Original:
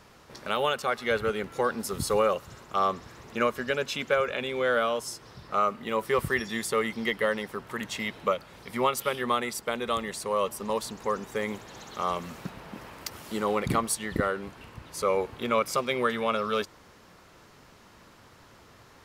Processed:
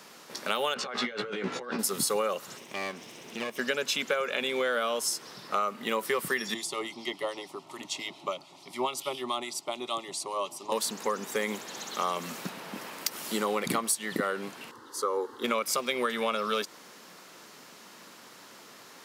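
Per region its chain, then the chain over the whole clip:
0:00.74–0:01.79: compressor whose output falls as the input rises −38 dBFS + high-frequency loss of the air 140 metres + double-tracking delay 16 ms −4 dB
0:02.57–0:03.59: lower of the sound and its delayed copy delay 0.33 ms + high-shelf EQ 8,500 Hz −6.5 dB + downward compressor 2 to 1, threshold −41 dBFS
0:06.54–0:10.72: phaser with its sweep stopped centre 320 Hz, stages 8 + two-band tremolo in antiphase 7 Hz, depth 50%, crossover 1,600 Hz + high-frequency loss of the air 58 metres
0:14.71–0:15.44: high-shelf EQ 5,700 Hz −11.5 dB + phaser with its sweep stopped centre 650 Hz, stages 6
whole clip: high-pass filter 180 Hz 24 dB per octave; high-shelf EQ 3,000 Hz +9 dB; downward compressor, threshold −27 dBFS; level +2 dB

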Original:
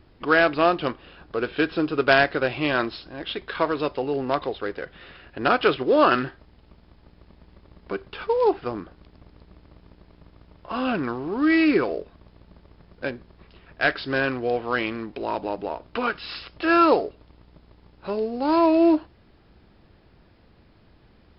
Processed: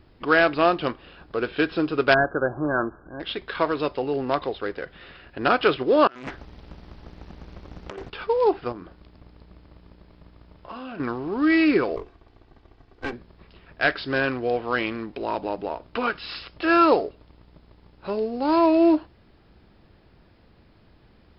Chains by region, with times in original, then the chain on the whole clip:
0:02.14–0:03.20: gain into a clipping stage and back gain 13 dB + linear-phase brick-wall low-pass 1,700 Hz
0:06.07–0:08.10: compressor whose output falls as the input rises −37 dBFS + highs frequency-modulated by the lows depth 0.96 ms
0:08.72–0:11.00: double-tracking delay 34 ms −11.5 dB + downward compressor 10 to 1, threshold −33 dBFS
0:11.96–0:13.13: lower of the sound and its delayed copy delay 2.6 ms + high-frequency loss of the air 89 metres + mains-hum notches 60/120/180/240/300/360/420 Hz
whole clip: no processing

